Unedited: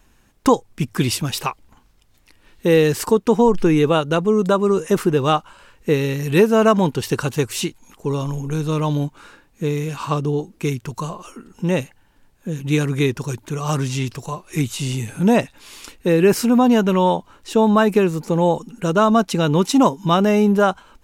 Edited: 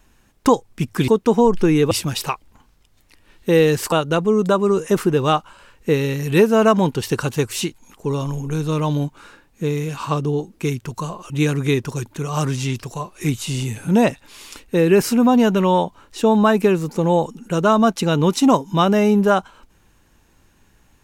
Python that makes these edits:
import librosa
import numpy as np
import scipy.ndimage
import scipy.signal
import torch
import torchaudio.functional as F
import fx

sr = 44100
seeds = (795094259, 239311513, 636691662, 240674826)

y = fx.edit(x, sr, fx.move(start_s=3.09, length_s=0.83, to_s=1.08),
    fx.cut(start_s=11.3, length_s=1.32), tone=tone)